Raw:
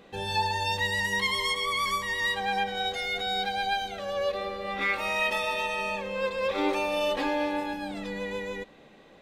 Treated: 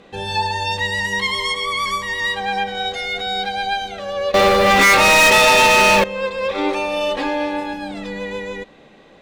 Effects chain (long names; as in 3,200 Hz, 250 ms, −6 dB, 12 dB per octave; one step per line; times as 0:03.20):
low-pass filter 9,600 Hz 12 dB per octave
0:04.34–0:06.04: leveller curve on the samples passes 5
level +6.5 dB